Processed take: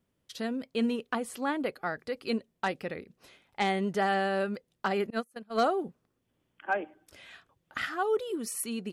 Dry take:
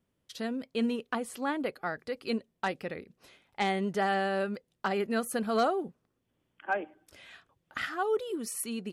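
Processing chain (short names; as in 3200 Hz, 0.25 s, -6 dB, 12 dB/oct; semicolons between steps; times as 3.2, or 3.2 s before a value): 5.1–5.64 gate -27 dBFS, range -30 dB; gain +1 dB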